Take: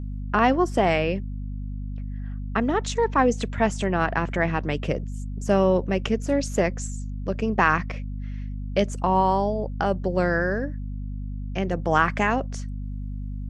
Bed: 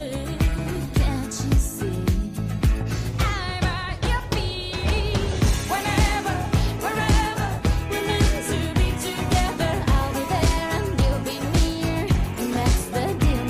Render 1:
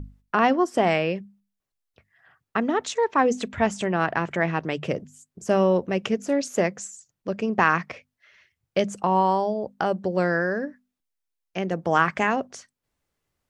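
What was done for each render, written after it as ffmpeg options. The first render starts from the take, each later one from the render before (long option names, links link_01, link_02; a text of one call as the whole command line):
ffmpeg -i in.wav -af "bandreject=frequency=50:width_type=h:width=6,bandreject=frequency=100:width_type=h:width=6,bandreject=frequency=150:width_type=h:width=6,bandreject=frequency=200:width_type=h:width=6,bandreject=frequency=250:width_type=h:width=6" out.wav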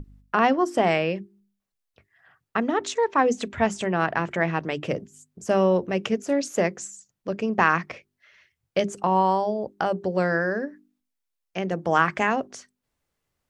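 ffmpeg -i in.wav -af "bandreject=frequency=50:width_type=h:width=6,bandreject=frequency=100:width_type=h:width=6,bandreject=frequency=150:width_type=h:width=6,bandreject=frequency=200:width_type=h:width=6,bandreject=frequency=250:width_type=h:width=6,bandreject=frequency=300:width_type=h:width=6,bandreject=frequency=350:width_type=h:width=6,bandreject=frequency=400:width_type=h:width=6" out.wav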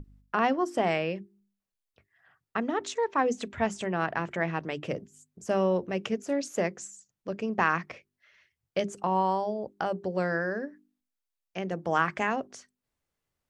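ffmpeg -i in.wav -af "volume=-5.5dB" out.wav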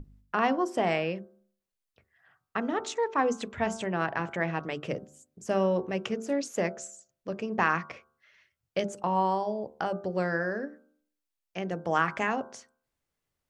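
ffmpeg -i in.wav -af "bandreject=frequency=74.75:width_type=h:width=4,bandreject=frequency=149.5:width_type=h:width=4,bandreject=frequency=224.25:width_type=h:width=4,bandreject=frequency=299:width_type=h:width=4,bandreject=frequency=373.75:width_type=h:width=4,bandreject=frequency=448.5:width_type=h:width=4,bandreject=frequency=523.25:width_type=h:width=4,bandreject=frequency=598:width_type=h:width=4,bandreject=frequency=672.75:width_type=h:width=4,bandreject=frequency=747.5:width_type=h:width=4,bandreject=frequency=822.25:width_type=h:width=4,bandreject=frequency=897:width_type=h:width=4,bandreject=frequency=971.75:width_type=h:width=4,bandreject=frequency=1046.5:width_type=h:width=4,bandreject=frequency=1121.25:width_type=h:width=4,bandreject=frequency=1196:width_type=h:width=4,bandreject=frequency=1270.75:width_type=h:width=4,bandreject=frequency=1345.5:width_type=h:width=4,bandreject=frequency=1420.25:width_type=h:width=4,bandreject=frequency=1495:width_type=h:width=4,bandreject=frequency=1569.75:width_type=h:width=4" out.wav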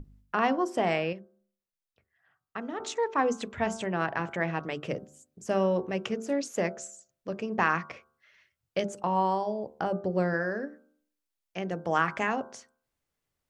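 ffmpeg -i in.wav -filter_complex "[0:a]asettb=1/sr,asplit=3[link_01][link_02][link_03];[link_01]atrim=end=9.794[link_04];[link_02]atrim=start=9.79:end=10.34,asetpts=PTS-STARTPTS,afade=type=in:duration=0.004:curve=qsin,afade=type=out:start_time=0.546:duration=0.004:curve=qsin,tiltshelf=frequency=830:gain=4[link_05];[link_03]atrim=start=10.336[link_06];[link_04][link_05]acrossfade=duration=0.004:curve1=hsin:curve2=qsin[link_07];[link_07][link_06]acrossfade=duration=0.004:curve1=qsin:curve2=hsin,asplit=3[link_08][link_09][link_10];[link_08]atrim=end=1.132[link_11];[link_09]atrim=start=1.128:end=2.802,asetpts=PTS-STARTPTS,volume=-6dB[link_12];[link_10]atrim=start=2.798[link_13];[link_11][link_12]acrossfade=duration=0.004:curve1=hsin:curve2=hsin[link_14];[link_14][link_13]acrossfade=duration=0.004:curve1=hsin:curve2=hsin" out.wav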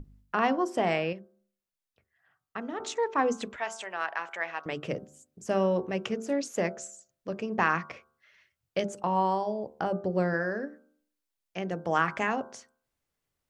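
ffmpeg -i in.wav -filter_complex "[0:a]asettb=1/sr,asplit=3[link_01][link_02][link_03];[link_01]atrim=end=3.564[link_04];[link_02]atrim=start=3.56:end=4.66,asetpts=PTS-STARTPTS,afade=type=in:duration=0.004:curve=qsin,afade=type=out:start_time=1.096:duration=0.004:curve=qsin,highpass=820[link_05];[link_03]atrim=start=4.656[link_06];[link_04][link_05]acrossfade=duration=0.004:curve1=hsin:curve2=qsin[link_07];[link_07][link_06]acrossfade=duration=0.004:curve1=qsin:curve2=hsin" out.wav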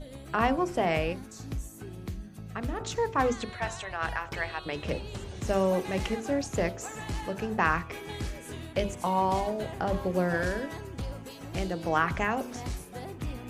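ffmpeg -i in.wav -i bed.wav -filter_complex "[1:a]volume=-16dB[link_01];[0:a][link_01]amix=inputs=2:normalize=0" out.wav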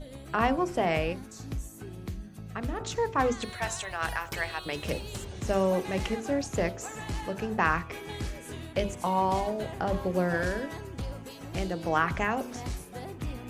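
ffmpeg -i in.wav -filter_complex "[0:a]asettb=1/sr,asplit=3[link_01][link_02][link_03];[link_01]atrim=end=3.424[link_04];[link_02]atrim=start=3.42:end=5.25,asetpts=PTS-STARTPTS,afade=type=in:duration=0.004:curve=qsin,afade=type=out:start_time=1.826:duration=0.004:curve=qsin,aemphasis=mode=production:type=50fm[link_05];[link_03]atrim=start=5.246[link_06];[link_04][link_05]acrossfade=duration=0.004:curve1=hsin:curve2=qsin[link_07];[link_07][link_06]acrossfade=duration=0.004:curve1=qsin:curve2=hsin" out.wav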